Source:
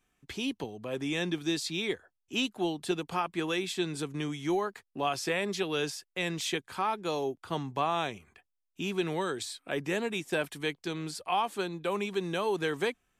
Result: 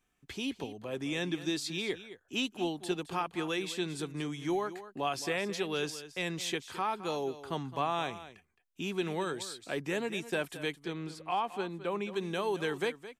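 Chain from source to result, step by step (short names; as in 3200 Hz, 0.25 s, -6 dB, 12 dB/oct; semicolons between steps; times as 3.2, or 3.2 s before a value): 10.73–12.16 high shelf 4500 Hz -11.5 dB; echo 0.216 s -14 dB; gain -2.5 dB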